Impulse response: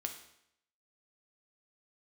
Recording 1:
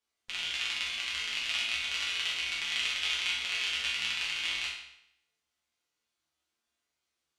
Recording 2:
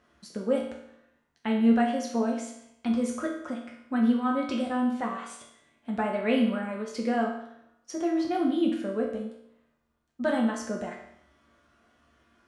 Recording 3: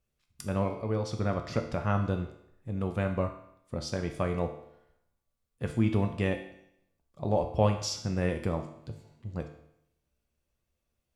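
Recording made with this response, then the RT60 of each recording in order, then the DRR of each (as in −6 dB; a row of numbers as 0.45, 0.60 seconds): 3; 0.75, 0.75, 0.75 seconds; −7.0, −1.5, 4.0 decibels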